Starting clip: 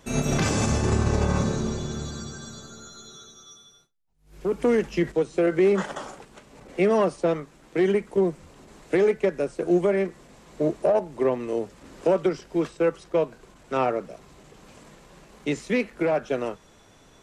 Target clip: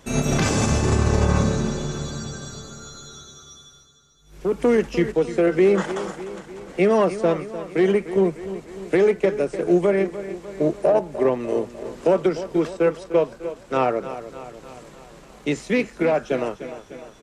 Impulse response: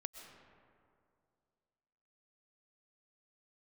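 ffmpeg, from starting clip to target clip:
-af "aecho=1:1:300|600|900|1200|1500|1800:0.224|0.128|0.0727|0.0415|0.0236|0.0135,volume=3dB"

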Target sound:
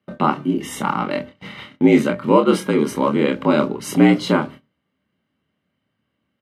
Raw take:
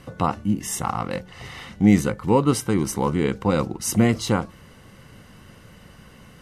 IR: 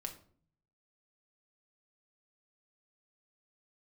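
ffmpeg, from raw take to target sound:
-filter_complex "[0:a]afreqshift=66,agate=range=-31dB:threshold=-37dB:ratio=16:detection=peak,highshelf=f=4.6k:t=q:w=1.5:g=-8.5,asplit=2[a][b];[b]adelay=27,volume=-5.5dB[c];[a][c]amix=inputs=2:normalize=0,asplit=2[d][e];[1:a]atrim=start_sample=2205,atrim=end_sample=6615,asetrate=42336,aresample=44100[f];[e][f]afir=irnorm=-1:irlink=0,volume=-10.5dB[g];[d][g]amix=inputs=2:normalize=0,volume=1.5dB"

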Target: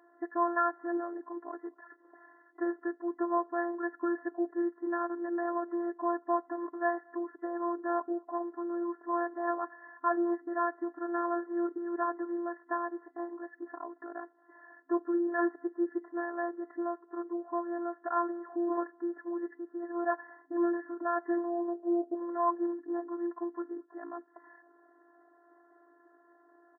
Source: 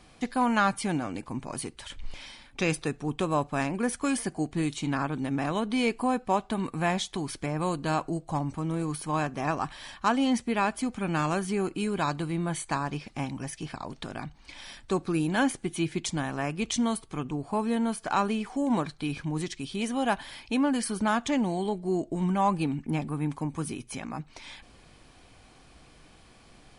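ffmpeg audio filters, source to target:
-filter_complex "[0:a]asplit=2[a][b];[b]adelay=227.4,volume=-29dB,highshelf=f=4k:g=-5.12[c];[a][c]amix=inputs=2:normalize=0,afftfilt=real='hypot(re,im)*cos(PI*b)':imag='0':win_size=512:overlap=0.75,afftfilt=real='re*between(b*sr/4096,270,2000)':imag='im*between(b*sr/4096,270,2000)':win_size=4096:overlap=0.75"

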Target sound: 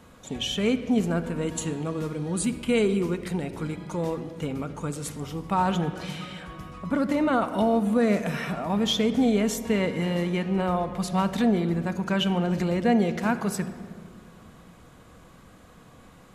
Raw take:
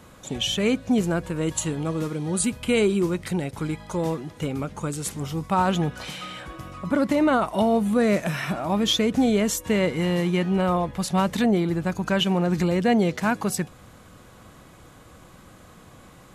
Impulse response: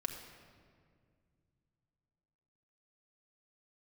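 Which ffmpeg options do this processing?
-filter_complex "[0:a]asplit=2[a][b];[1:a]atrim=start_sample=2205,highshelf=f=6.5k:g=-9[c];[b][c]afir=irnorm=-1:irlink=0,volume=1dB[d];[a][d]amix=inputs=2:normalize=0,volume=-9dB"

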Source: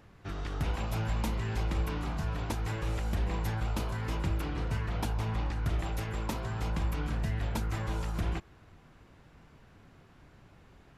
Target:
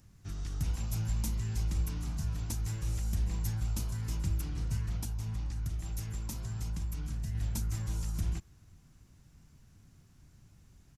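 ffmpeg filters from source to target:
-filter_complex "[0:a]asettb=1/sr,asplit=3[a][b][c];[a]atrim=end=4.964[d];[b]atrim=start=4.96:end=7.35,asetpts=PTS-STARTPTS,afade=t=in:d=0.004:c=qsin,afade=t=out:st=2.386:d=0.004:c=qsin,acompressor=threshold=-31dB:ratio=6[e];[c]atrim=start=7.346[f];[d][e]acrossfade=d=0.004:c1=hsin:c2=qsin[g];[g][f]acrossfade=d=0.004:c1=qsin:c2=hsin,firequalizer=gain_entry='entry(110,0);entry(450,-15);entry(3500,-7);entry(5900,6)':delay=0.05:min_phase=1"

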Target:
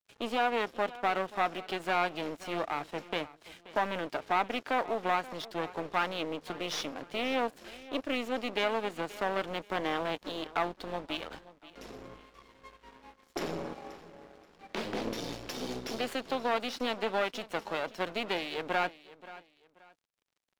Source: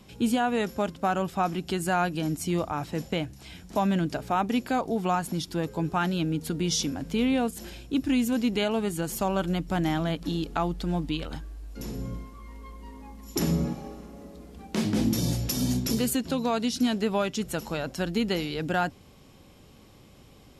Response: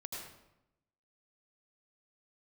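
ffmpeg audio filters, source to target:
-filter_complex "[0:a]aeval=exprs='clip(val(0),-1,0.0178)':c=same,acrossover=split=360 4400:gain=0.126 1 0.1[a][b][c];[a][b][c]amix=inputs=3:normalize=0,aeval=exprs='sgn(val(0))*max(abs(val(0))-0.00251,0)':c=same,asplit=2[d][e];[e]aecho=0:1:530|1060:0.126|0.0352[f];[d][f]amix=inputs=2:normalize=0,volume=2.5dB"

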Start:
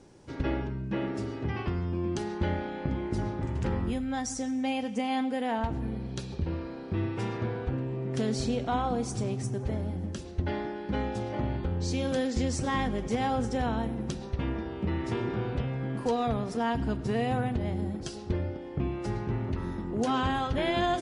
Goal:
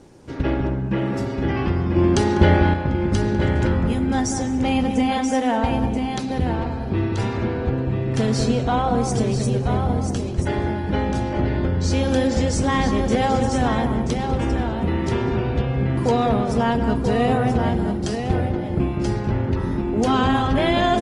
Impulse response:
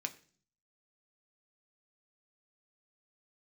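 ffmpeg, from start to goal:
-filter_complex "[0:a]asplit=2[a][b];[b]adelay=198,lowpass=f=1.1k:p=1,volume=-5dB,asplit=2[c][d];[d]adelay=198,lowpass=f=1.1k:p=1,volume=0.27,asplit=2[e][f];[f]adelay=198,lowpass=f=1.1k:p=1,volume=0.27,asplit=2[g][h];[h]adelay=198,lowpass=f=1.1k:p=1,volume=0.27[i];[c][e][g][i]amix=inputs=4:normalize=0[j];[a][j]amix=inputs=2:normalize=0,asettb=1/sr,asplit=3[k][l][m];[k]atrim=end=1.964[n];[l]atrim=start=1.96:end=2.74,asetpts=PTS-STARTPTS,afade=t=in:d=0.004:c=qsin,afade=t=out:st=0.776:d=0.004:c=qsin,acontrast=64[o];[m]atrim=start=2.736[p];[n][o]acrossfade=d=0.004:c1=hsin:c2=qsin[q];[q][p]acrossfade=d=0.004:c1=qsin:c2=hsin,asplit=2[r][s];[s]aecho=0:1:983:0.473[t];[r][t]amix=inputs=2:normalize=0,volume=8dB" -ar 48000 -c:a libopus -b:a 20k

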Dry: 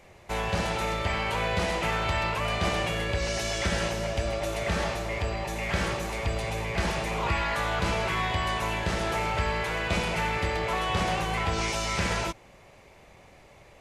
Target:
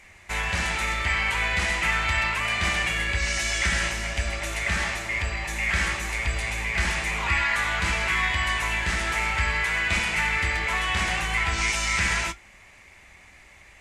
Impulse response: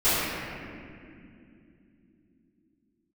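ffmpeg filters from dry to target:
-af "equalizer=f=61:w=0.42:g=6.5,flanger=delay=8.8:depth=7.8:regen=-64:speed=0.4:shape=triangular,equalizer=f=125:t=o:w=1:g=-10,equalizer=f=500:t=o:w=1:g=-9,equalizer=f=2k:t=o:w=1:g=11,equalizer=f=8k:t=o:w=1:g=9,volume=3dB"

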